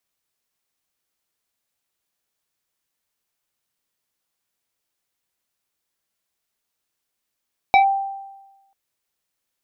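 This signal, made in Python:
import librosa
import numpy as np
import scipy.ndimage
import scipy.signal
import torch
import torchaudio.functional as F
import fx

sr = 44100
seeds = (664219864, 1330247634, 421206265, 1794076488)

y = fx.fm2(sr, length_s=0.99, level_db=-8.0, carrier_hz=785.0, ratio=1.95, index=1.1, index_s=0.11, decay_s=1.11, shape='linear')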